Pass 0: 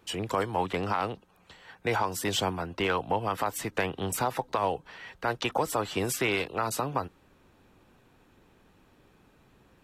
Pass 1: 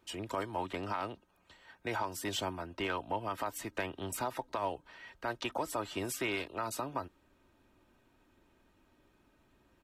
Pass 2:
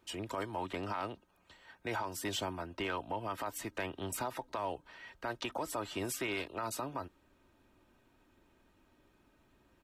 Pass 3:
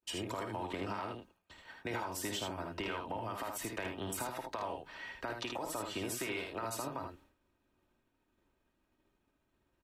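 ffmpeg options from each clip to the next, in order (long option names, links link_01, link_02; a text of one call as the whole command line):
ffmpeg -i in.wav -af "aecho=1:1:3.2:0.42,volume=-8dB" out.wav
ffmpeg -i in.wav -af "alimiter=level_in=2.5dB:limit=-24dB:level=0:latency=1:release=33,volume=-2.5dB" out.wav
ffmpeg -i in.wav -af "agate=range=-33dB:threshold=-57dB:ratio=3:detection=peak,acompressor=threshold=-41dB:ratio=4,aecho=1:1:53|78:0.376|0.562,volume=3.5dB" out.wav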